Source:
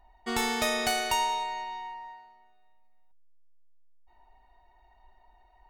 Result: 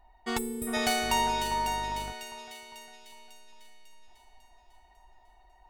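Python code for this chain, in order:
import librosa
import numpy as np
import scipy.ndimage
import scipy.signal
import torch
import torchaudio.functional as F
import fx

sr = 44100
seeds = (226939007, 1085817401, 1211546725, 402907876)

y = fx.spec_box(x, sr, start_s=0.38, length_s=0.36, low_hz=460.0, high_hz=7400.0, gain_db=-26)
y = fx.echo_split(y, sr, split_hz=2100.0, low_ms=402, high_ms=548, feedback_pct=52, wet_db=-6.5)
y = fx.dmg_buzz(y, sr, base_hz=50.0, harmonics=29, level_db=-42.0, tilt_db=-6, odd_only=False, at=(1.01, 2.11), fade=0.02)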